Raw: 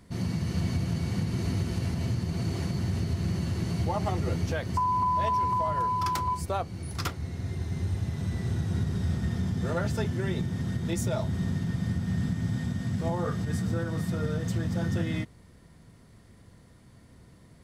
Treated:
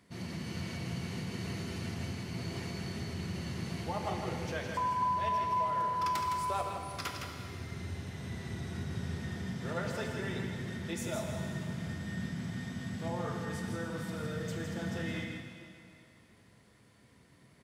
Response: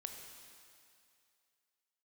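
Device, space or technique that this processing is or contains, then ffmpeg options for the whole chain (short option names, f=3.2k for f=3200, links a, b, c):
PA in a hall: -filter_complex "[0:a]highpass=f=180:p=1,equalizer=f=2.4k:t=o:w=1.3:g=5,aecho=1:1:162:0.501[a];[1:a]atrim=start_sample=2205[b];[a][b]afir=irnorm=-1:irlink=0,volume=-2.5dB"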